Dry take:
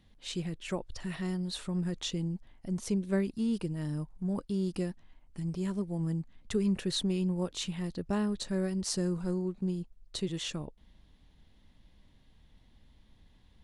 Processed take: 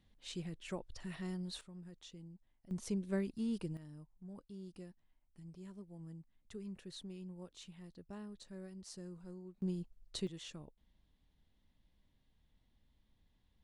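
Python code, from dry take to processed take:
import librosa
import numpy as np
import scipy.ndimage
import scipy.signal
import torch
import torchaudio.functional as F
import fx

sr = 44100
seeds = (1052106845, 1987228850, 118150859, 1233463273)

y = fx.gain(x, sr, db=fx.steps((0.0, -8.0), (1.61, -19.5), (2.71, -7.0), (3.77, -18.0), (9.62, -5.5), (10.27, -13.0)))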